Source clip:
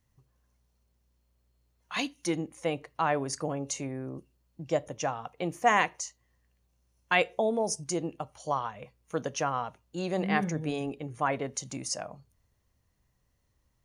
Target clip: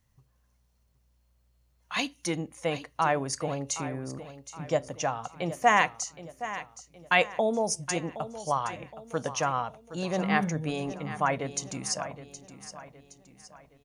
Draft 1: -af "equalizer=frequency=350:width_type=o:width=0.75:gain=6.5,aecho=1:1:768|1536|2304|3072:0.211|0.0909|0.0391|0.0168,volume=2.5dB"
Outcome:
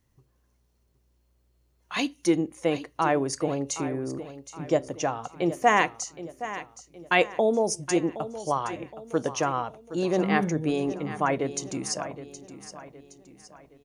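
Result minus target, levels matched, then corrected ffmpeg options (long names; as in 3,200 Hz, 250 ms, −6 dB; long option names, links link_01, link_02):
250 Hz band +3.5 dB
-af "equalizer=frequency=350:width_type=o:width=0.75:gain=-5,aecho=1:1:768|1536|2304|3072:0.211|0.0909|0.0391|0.0168,volume=2.5dB"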